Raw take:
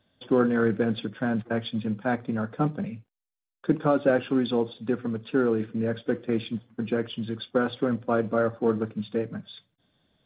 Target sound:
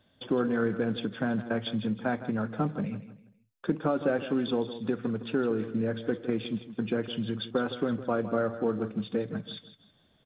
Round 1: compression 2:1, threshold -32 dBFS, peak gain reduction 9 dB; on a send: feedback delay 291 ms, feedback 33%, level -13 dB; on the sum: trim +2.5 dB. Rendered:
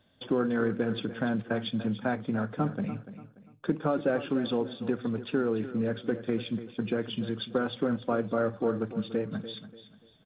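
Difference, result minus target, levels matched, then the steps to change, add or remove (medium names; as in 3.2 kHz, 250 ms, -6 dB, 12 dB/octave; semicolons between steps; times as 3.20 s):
echo 130 ms late
change: feedback delay 161 ms, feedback 33%, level -13 dB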